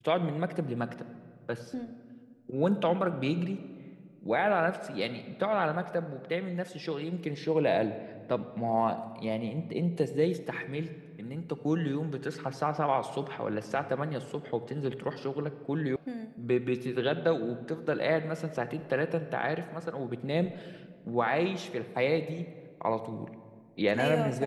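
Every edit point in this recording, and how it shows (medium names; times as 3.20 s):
15.96 s: sound stops dead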